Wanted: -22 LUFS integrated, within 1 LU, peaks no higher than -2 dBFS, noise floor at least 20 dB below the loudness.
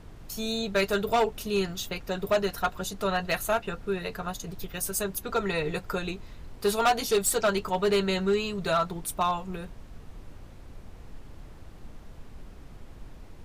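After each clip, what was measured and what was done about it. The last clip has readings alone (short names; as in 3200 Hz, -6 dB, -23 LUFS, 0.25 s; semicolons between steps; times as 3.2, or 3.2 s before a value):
clipped 0.7%; flat tops at -18.0 dBFS; noise floor -47 dBFS; noise floor target -49 dBFS; loudness -28.5 LUFS; peak -18.0 dBFS; loudness target -22.0 LUFS
-> clip repair -18 dBFS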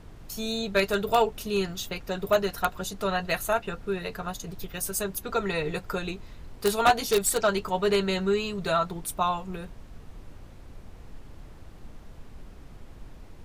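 clipped 0.0%; noise floor -47 dBFS; noise floor target -48 dBFS
-> noise print and reduce 6 dB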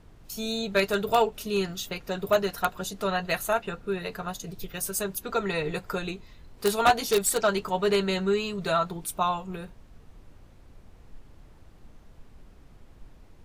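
noise floor -53 dBFS; loudness -27.5 LUFS; peak -9.0 dBFS; loudness target -22.0 LUFS
-> gain +5.5 dB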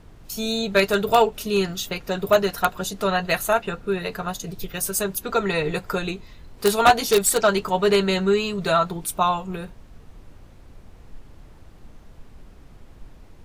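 loudness -22.0 LUFS; peak -3.5 dBFS; noise floor -47 dBFS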